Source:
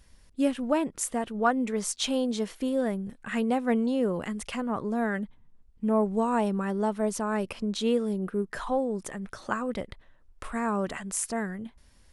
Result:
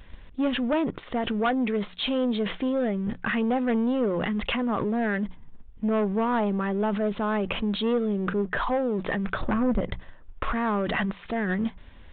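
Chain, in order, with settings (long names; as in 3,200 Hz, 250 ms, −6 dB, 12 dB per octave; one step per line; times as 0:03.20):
mains-hum notches 60/120/180 Hz
0:09.41–0:09.81: spectral tilt −4.5 dB per octave
leveller curve on the samples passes 1
in parallel at +1 dB: compressor whose output falls as the input rises −35 dBFS, ratio −0.5
on the sum: soft clipping −18.5 dBFS, distortion −15 dB
on a send at −21 dB: convolution reverb, pre-delay 3 ms
on the sum: downsampling to 8,000 Hz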